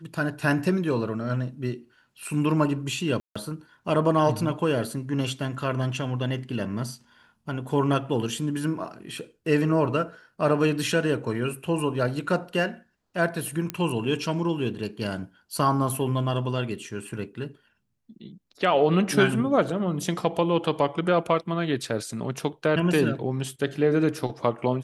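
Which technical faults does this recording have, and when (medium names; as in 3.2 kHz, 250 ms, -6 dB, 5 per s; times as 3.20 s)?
3.20–3.35 s: dropout 155 ms
13.70 s: pop -12 dBFS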